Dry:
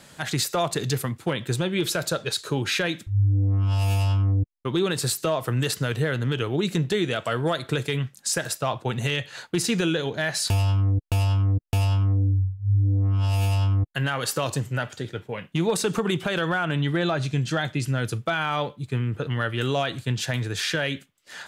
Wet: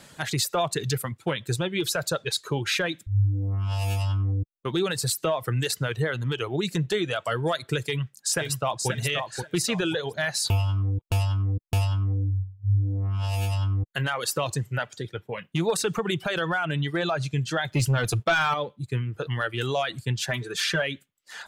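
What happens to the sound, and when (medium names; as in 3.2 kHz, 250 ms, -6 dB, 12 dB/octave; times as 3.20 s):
2.64–3.81 s: short-mantissa float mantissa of 8-bit
7.83–8.89 s: echo throw 530 ms, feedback 35%, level -5 dB
17.72–18.54 s: waveshaping leveller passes 2
20.28–20.82 s: comb 5.1 ms, depth 64%
whole clip: reverb removal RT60 1 s; dynamic bell 250 Hz, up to -6 dB, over -43 dBFS, Q 2.5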